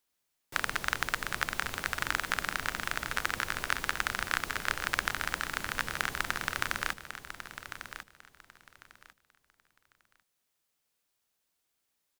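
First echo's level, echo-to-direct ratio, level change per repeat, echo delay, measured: −10.5 dB, −10.5 dB, −13.0 dB, 1,098 ms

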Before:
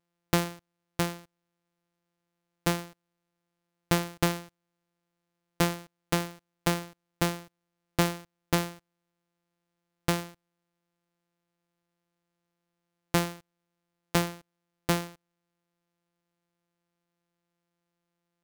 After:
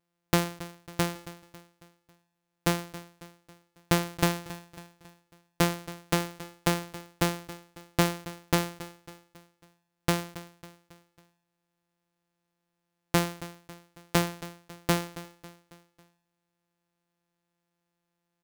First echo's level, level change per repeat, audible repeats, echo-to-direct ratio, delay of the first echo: −16.5 dB, −6.0 dB, 3, −15.5 dB, 274 ms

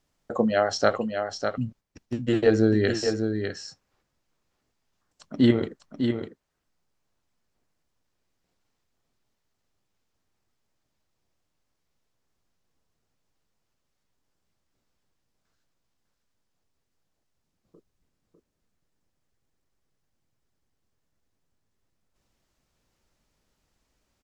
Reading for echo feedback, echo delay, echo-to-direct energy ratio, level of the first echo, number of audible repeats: repeats not evenly spaced, 601 ms, −6.5 dB, −6.5 dB, 1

